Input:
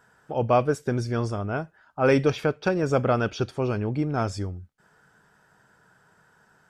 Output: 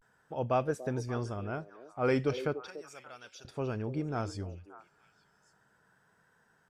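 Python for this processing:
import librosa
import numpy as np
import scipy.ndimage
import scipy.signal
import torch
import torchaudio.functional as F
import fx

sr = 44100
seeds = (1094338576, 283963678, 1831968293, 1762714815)

y = fx.vibrato(x, sr, rate_hz=0.36, depth_cents=66.0)
y = fx.pre_emphasis(y, sr, coefficient=0.97, at=(2.67, 3.45))
y = fx.echo_stepped(y, sr, ms=289, hz=420.0, octaves=1.4, feedback_pct=70, wet_db=-10.0)
y = y * librosa.db_to_amplitude(-8.5)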